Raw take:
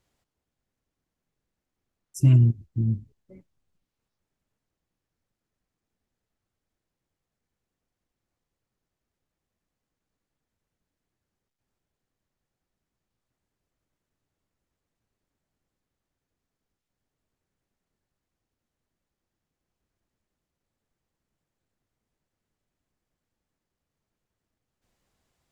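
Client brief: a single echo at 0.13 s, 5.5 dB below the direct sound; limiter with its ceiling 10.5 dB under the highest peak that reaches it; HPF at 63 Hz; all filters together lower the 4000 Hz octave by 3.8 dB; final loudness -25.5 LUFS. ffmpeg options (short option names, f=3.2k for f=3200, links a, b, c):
-af "highpass=63,equalizer=f=4k:t=o:g=-7,alimiter=limit=-19dB:level=0:latency=1,aecho=1:1:130:0.531,volume=3dB"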